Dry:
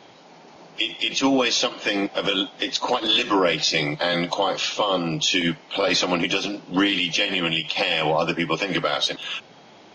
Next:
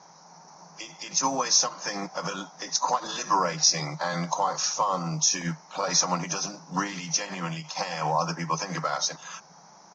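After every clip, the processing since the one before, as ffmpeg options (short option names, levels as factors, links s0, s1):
-af "lowshelf=f=140:t=q:w=3:g=-7.5,acrusher=bits=8:mode=log:mix=0:aa=0.000001,firequalizer=gain_entry='entry(160,0);entry(230,-14);entry(340,-13);entry(940,5);entry(3100,-20);entry(5800,14);entry(10000,-26)':delay=0.05:min_phase=1,volume=0.708"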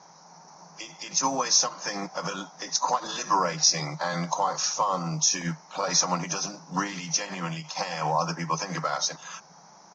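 -af anull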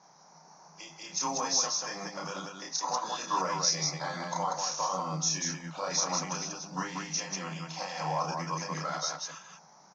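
-af "aecho=1:1:32.07|189.5:0.794|0.708,volume=0.376"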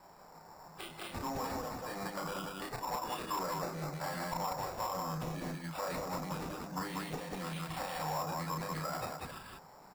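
-filter_complex "[0:a]acrossover=split=860[s0][s1];[s0]asoftclip=type=tanh:threshold=0.0126[s2];[s1]acompressor=threshold=0.00891:ratio=8[s3];[s2][s3]amix=inputs=2:normalize=0,acrusher=samples=7:mix=1:aa=0.000001,volume=1.19"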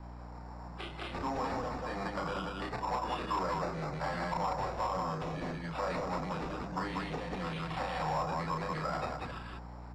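-filter_complex "[0:a]lowpass=3900,aeval=exprs='val(0)+0.00355*(sin(2*PI*60*n/s)+sin(2*PI*2*60*n/s)/2+sin(2*PI*3*60*n/s)/3+sin(2*PI*4*60*n/s)/4+sin(2*PI*5*60*n/s)/5)':c=same,acrossover=split=340|900[s0][s1][s2];[s0]aeval=exprs='0.0106*(abs(mod(val(0)/0.0106+3,4)-2)-1)':c=same[s3];[s3][s1][s2]amix=inputs=3:normalize=0,volume=1.5"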